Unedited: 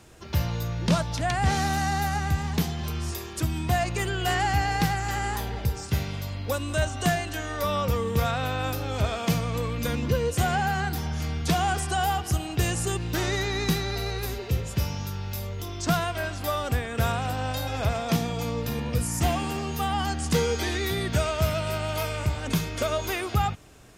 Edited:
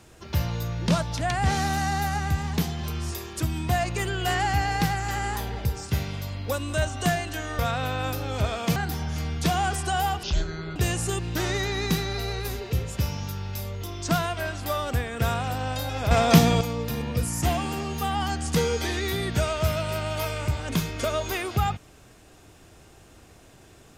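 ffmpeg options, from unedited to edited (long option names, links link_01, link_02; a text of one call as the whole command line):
ffmpeg -i in.wav -filter_complex "[0:a]asplit=7[link_01][link_02][link_03][link_04][link_05][link_06][link_07];[link_01]atrim=end=7.592[link_08];[link_02]atrim=start=8.188:end=9.362[link_09];[link_03]atrim=start=10.798:end=12.274[link_10];[link_04]atrim=start=12.27:end=12.54,asetpts=PTS-STARTPTS,asetrate=22491,aresample=44100,atrim=end_sample=23347,asetpts=PTS-STARTPTS[link_11];[link_05]atrim=start=12.536:end=17.892[link_12];[link_06]atrim=start=17.888:end=18.392,asetpts=PTS-STARTPTS,volume=9dB[link_13];[link_07]atrim=start=18.388[link_14];[link_08][link_09]acrossfade=duration=0.004:curve1=hsin:curve2=hsin[link_15];[link_15][link_10]acrossfade=duration=0.004:curve1=hsin:curve2=hsin[link_16];[link_16][link_11]acrossfade=duration=0.004:curve1=hsin:curve2=hsin[link_17];[link_17][link_12]acrossfade=duration=0.004:curve1=hsin:curve2=hsin[link_18];[link_18][link_13]acrossfade=duration=0.004:curve1=hsin:curve2=hsin[link_19];[link_19][link_14]acrossfade=duration=0.004:curve1=hsin:curve2=hsin" out.wav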